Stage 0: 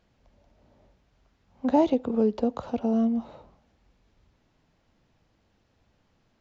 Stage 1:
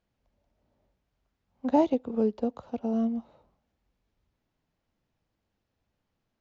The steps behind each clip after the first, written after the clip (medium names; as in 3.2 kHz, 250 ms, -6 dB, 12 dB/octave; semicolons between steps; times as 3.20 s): upward expansion 1.5:1, over -40 dBFS; trim -1 dB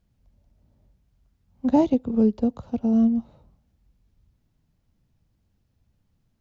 tone controls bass +15 dB, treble +6 dB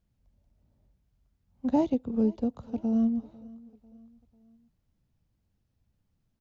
feedback delay 496 ms, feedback 46%, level -22 dB; trim -6 dB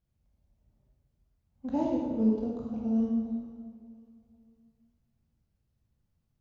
reverberation RT60 1.6 s, pre-delay 12 ms, DRR -2.5 dB; trim -7 dB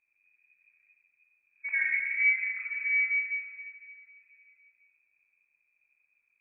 frequency inversion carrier 2.5 kHz